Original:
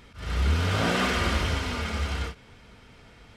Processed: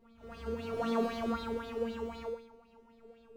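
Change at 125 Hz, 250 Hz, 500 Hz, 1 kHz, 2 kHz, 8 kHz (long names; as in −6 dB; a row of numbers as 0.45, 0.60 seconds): −22.5 dB, −4.5 dB, −1.5 dB, −8.5 dB, −18.5 dB, below −20 dB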